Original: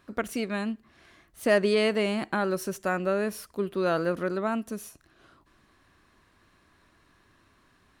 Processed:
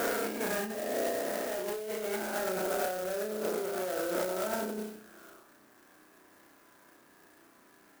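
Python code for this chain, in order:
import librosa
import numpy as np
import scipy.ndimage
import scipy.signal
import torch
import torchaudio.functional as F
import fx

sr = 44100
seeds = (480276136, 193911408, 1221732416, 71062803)

y = fx.spec_swells(x, sr, rise_s=2.05)
y = fx.spacing_loss(y, sr, db_at_10k=26)
y = 10.0 ** (-26.5 / 20.0) * np.tanh(y / 10.0 ** (-26.5 / 20.0))
y = fx.peak_eq(y, sr, hz=1100.0, db=-8.0, octaves=0.2)
y = fx.room_flutter(y, sr, wall_m=5.6, rt60_s=0.67)
y = fx.over_compress(y, sr, threshold_db=-31.0, ratio=-1.0)
y = scipy.signal.sosfilt(scipy.signal.butter(2, 350.0, 'highpass', fs=sr, output='sos'), y)
y = fx.clock_jitter(y, sr, seeds[0], jitter_ms=0.069)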